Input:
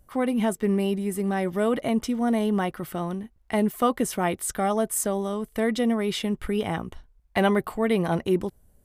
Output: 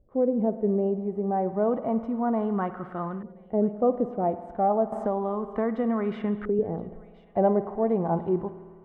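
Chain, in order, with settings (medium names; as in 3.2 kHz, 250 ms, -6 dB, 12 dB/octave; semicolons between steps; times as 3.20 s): spring tank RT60 1.7 s, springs 53 ms, chirp 60 ms, DRR 12.5 dB; harmonic-percussive split harmonic +4 dB; LFO low-pass saw up 0.31 Hz 460–1500 Hz; on a send: feedback echo behind a high-pass 1025 ms, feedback 37%, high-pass 2.2 kHz, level -16.5 dB; 4.92–6.59 s: on the sum: three bands compressed up and down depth 70%; trim -7.5 dB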